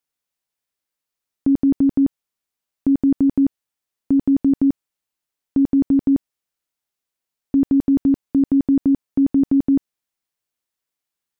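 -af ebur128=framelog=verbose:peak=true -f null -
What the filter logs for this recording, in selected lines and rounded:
Integrated loudness:
  I:         -18.8 LUFS
  Threshold: -28.9 LUFS
Loudness range:
  LRA:         3.0 LU
  Threshold: -40.5 LUFS
  LRA low:   -22.1 LUFS
  LRA high:  -19.1 LUFS
True peak:
  Peak:      -10.9 dBFS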